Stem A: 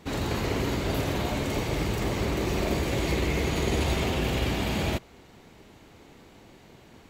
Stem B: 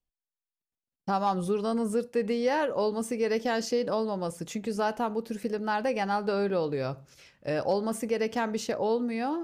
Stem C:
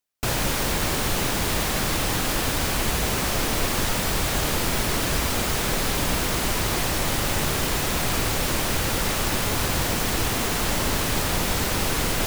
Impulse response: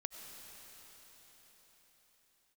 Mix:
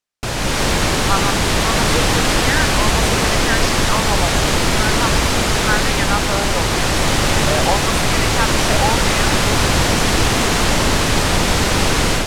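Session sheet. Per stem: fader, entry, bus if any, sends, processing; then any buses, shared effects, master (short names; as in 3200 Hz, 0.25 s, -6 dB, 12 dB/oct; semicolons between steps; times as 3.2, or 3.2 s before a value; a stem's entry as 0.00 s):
off
+0.5 dB, 0.00 s, no send, LFO high-pass sine 0.89 Hz 770–1700 Hz
+1.5 dB, 0.00 s, no send, LPF 8300 Hz 12 dB/oct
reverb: off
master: AGC gain up to 9.5 dB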